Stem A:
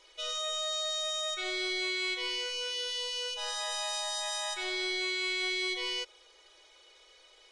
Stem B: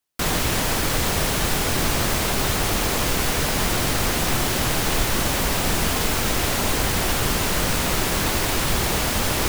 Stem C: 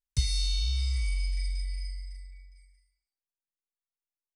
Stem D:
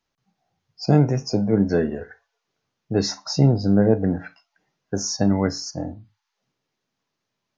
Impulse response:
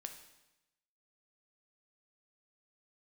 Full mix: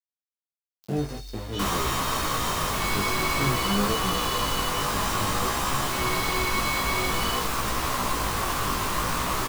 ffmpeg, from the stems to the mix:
-filter_complex "[0:a]aecho=1:1:2.3:0.65,adelay=1350,volume=1.26[s0];[1:a]equalizer=f=1100:t=o:w=0.43:g=13,adelay=1400,volume=0.631[s1];[2:a]adelay=800,volume=0.266[s2];[3:a]aeval=exprs='val(0)*gte(abs(val(0)),0.0794)':c=same,flanger=delay=4.5:depth=4.9:regen=-19:speed=0.49:shape=sinusoidal,volume=0.376,asplit=2[s3][s4];[s4]volume=0.501[s5];[4:a]atrim=start_sample=2205[s6];[s5][s6]afir=irnorm=-1:irlink=0[s7];[s0][s1][s2][s3][s7]amix=inputs=5:normalize=0,acrusher=bits=7:mix=0:aa=0.000001,flanger=delay=15:depth=5.2:speed=0.52"

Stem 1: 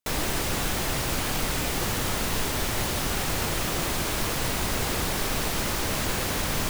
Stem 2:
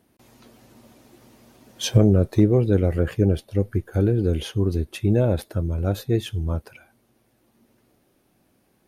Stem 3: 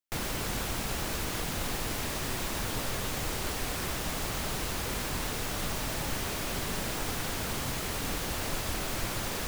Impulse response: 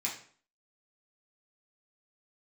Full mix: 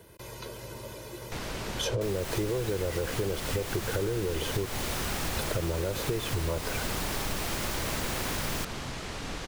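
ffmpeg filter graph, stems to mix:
-filter_complex "[0:a]adelay=1950,volume=0.668[s0];[1:a]aecho=1:1:2:0.83,acrossover=split=220|960[s1][s2][s3];[s1]acompressor=threshold=0.0141:ratio=4[s4];[s2]acompressor=threshold=0.0501:ratio=4[s5];[s3]acompressor=threshold=0.00708:ratio=4[s6];[s4][s5][s6]amix=inputs=3:normalize=0,volume=1.33,asplit=3[s7][s8][s9];[s7]atrim=end=4.66,asetpts=PTS-STARTPTS,afade=t=out:st=4.656:d=0.004:c=hsin[s10];[s8]atrim=start=4.66:end=5.37,asetpts=PTS-STARTPTS,volume=0[s11];[s9]atrim=start=5.37,asetpts=PTS-STARTPTS,afade=t=in:d=0.004:c=hsin[s12];[s10][s11][s12]concat=n=3:v=0:a=1[s13];[2:a]lowpass=6400,adelay=1200,volume=0.335[s14];[s13][s14]amix=inputs=2:normalize=0,acontrast=71,alimiter=limit=0.2:level=0:latency=1,volume=1[s15];[s0][s15]amix=inputs=2:normalize=0,acompressor=threshold=0.0447:ratio=6"

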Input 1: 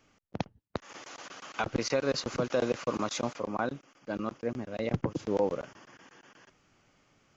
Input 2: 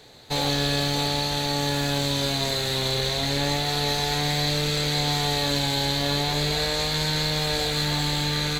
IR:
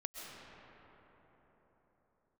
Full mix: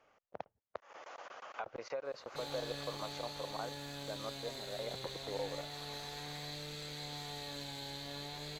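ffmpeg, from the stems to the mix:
-filter_complex "[0:a]lowpass=f=1100:p=1,lowshelf=f=390:t=q:w=1.5:g=-12,acompressor=threshold=0.00316:ratio=2,volume=1.26[s0];[1:a]adelay=2050,volume=0.1[s1];[s0][s1]amix=inputs=2:normalize=0,lowshelf=f=130:g=-5"

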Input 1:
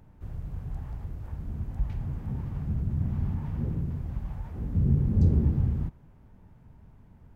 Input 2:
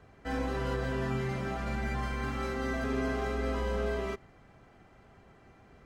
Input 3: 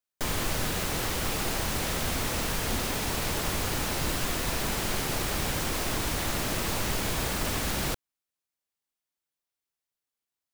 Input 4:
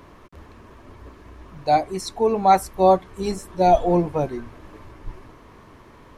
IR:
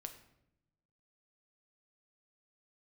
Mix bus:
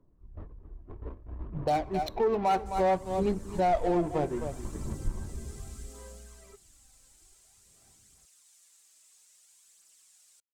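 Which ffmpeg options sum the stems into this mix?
-filter_complex "[0:a]afwtdn=0.0126,equalizer=f=160:w=2.2:g=-13.5,aecho=1:1:5.3:0.55,volume=0.211[s0];[1:a]acompressor=threshold=0.0126:ratio=2.5,aphaser=in_gain=1:out_gain=1:delay=3.9:decay=0.6:speed=0.55:type=sinusoidal,adelay=2400,volume=0.126[s1];[2:a]bandpass=f=7800:t=q:w=3:csg=0,asplit=2[s2][s3];[s3]adelay=5.2,afreqshift=-1[s4];[s2][s4]amix=inputs=2:normalize=1,adelay=2450,volume=0.355,afade=t=out:st=5.95:d=0.62:silence=0.421697[s5];[3:a]agate=range=0.0631:threshold=0.00794:ratio=16:detection=peak,adynamicsmooth=sensitivity=3.5:basefreq=580,volume=1.12,asplit=3[s6][s7][s8];[s7]volume=0.335[s9];[s8]volume=0.211[s10];[4:a]atrim=start_sample=2205[s11];[s9][s11]afir=irnorm=-1:irlink=0[s12];[s10]aecho=0:1:260:1[s13];[s0][s1][s5][s6][s12][s13]amix=inputs=6:normalize=0,aphaser=in_gain=1:out_gain=1:delay=3.1:decay=0.32:speed=0.61:type=triangular,asoftclip=type=tanh:threshold=0.422,alimiter=limit=0.106:level=0:latency=1:release=422"

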